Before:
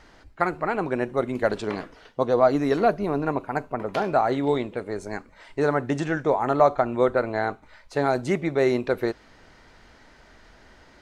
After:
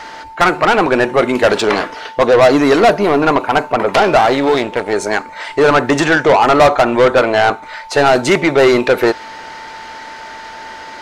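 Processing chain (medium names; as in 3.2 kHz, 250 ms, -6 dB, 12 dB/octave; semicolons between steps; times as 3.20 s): 4.17–4.93 s: partial rectifier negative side -12 dB; whistle 890 Hz -52 dBFS; overdrive pedal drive 24 dB, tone 7.5 kHz, clips at -5.5 dBFS; trim +4.5 dB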